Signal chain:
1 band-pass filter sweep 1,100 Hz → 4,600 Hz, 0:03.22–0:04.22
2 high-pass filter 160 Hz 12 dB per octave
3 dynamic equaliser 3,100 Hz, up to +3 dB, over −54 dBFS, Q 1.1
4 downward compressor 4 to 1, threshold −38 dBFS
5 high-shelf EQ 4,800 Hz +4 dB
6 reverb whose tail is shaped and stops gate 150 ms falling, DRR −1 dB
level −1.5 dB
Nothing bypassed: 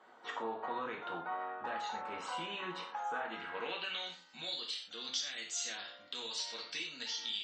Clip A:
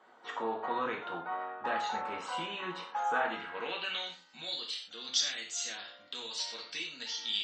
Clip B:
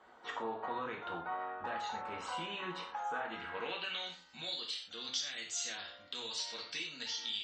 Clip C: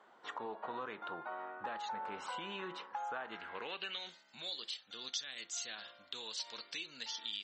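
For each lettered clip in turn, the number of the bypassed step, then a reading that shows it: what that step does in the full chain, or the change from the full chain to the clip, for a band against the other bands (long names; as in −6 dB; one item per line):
4, average gain reduction 2.5 dB
2, 125 Hz band +3.5 dB
6, change in integrated loudness −3.0 LU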